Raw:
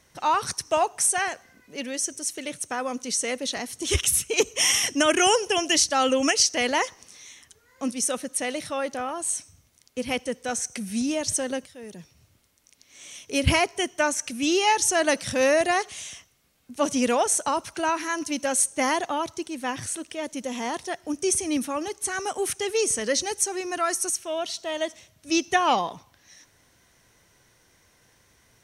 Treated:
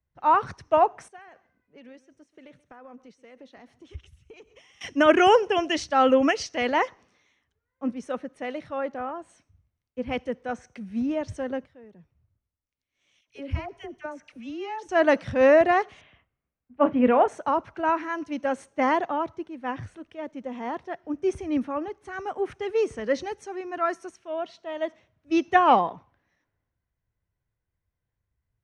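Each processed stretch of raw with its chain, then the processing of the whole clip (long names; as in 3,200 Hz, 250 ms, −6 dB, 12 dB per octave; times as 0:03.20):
0:01.08–0:04.81: downward compressor 20 to 1, threshold −33 dBFS + single-tap delay 133 ms −17 dB
0:13.21–0:14.89: downward compressor 3 to 1, threshold −29 dBFS + all-pass dispersion lows, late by 65 ms, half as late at 1,000 Hz
0:16.01–0:17.28: low-pass filter 3,200 Hz 24 dB per octave + double-tracking delay 32 ms −12.5 dB
whole clip: low-pass filter 1,700 Hz 12 dB per octave; multiband upward and downward expander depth 70%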